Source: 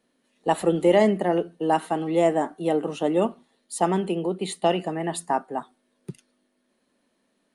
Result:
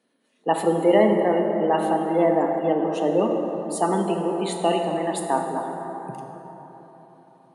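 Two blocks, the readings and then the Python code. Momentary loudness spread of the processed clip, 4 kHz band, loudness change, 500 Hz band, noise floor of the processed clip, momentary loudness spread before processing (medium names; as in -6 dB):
15 LU, 0.0 dB, +2.0 dB, +2.5 dB, -67 dBFS, 13 LU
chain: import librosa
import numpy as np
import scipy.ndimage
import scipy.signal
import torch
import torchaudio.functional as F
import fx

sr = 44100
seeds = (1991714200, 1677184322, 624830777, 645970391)

y = scipy.signal.sosfilt(scipy.signal.butter(2, 140.0, 'highpass', fs=sr, output='sos'), x)
y = fx.spec_gate(y, sr, threshold_db=-30, keep='strong')
y = fx.rev_plate(y, sr, seeds[0], rt60_s=4.2, hf_ratio=0.4, predelay_ms=0, drr_db=2.0)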